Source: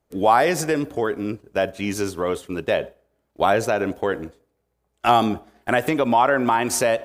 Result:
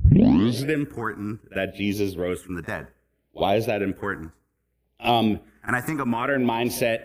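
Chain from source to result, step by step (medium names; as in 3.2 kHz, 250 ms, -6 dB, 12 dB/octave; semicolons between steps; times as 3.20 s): tape start-up on the opening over 0.72 s; phase shifter stages 4, 0.64 Hz, lowest notch 520–1400 Hz; pre-echo 47 ms -18 dB; trim +1 dB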